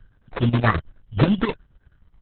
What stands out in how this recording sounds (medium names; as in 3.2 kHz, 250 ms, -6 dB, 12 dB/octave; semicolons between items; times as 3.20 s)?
phasing stages 8, 1.3 Hz, lowest notch 490–1100 Hz; chopped level 9.4 Hz, depth 65%, duty 65%; aliases and images of a low sample rate 3.1 kHz, jitter 0%; Opus